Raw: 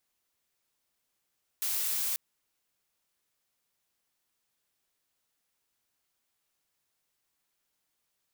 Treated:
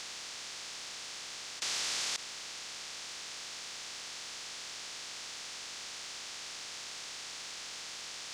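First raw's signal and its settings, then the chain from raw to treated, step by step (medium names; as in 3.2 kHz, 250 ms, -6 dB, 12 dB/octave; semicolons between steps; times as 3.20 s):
noise blue, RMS -31 dBFS 0.54 s
spectral levelling over time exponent 0.2; low-pass 6.4 kHz 24 dB/octave; in parallel at -10 dB: hysteresis with a dead band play -48 dBFS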